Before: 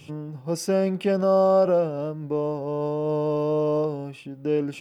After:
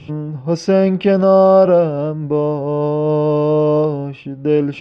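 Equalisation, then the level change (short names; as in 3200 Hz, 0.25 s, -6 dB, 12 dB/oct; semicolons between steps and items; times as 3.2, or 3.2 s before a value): dynamic EQ 4400 Hz, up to +5 dB, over -44 dBFS, Q 0.76; air absorption 200 m; low shelf 80 Hz +9.5 dB; +9.0 dB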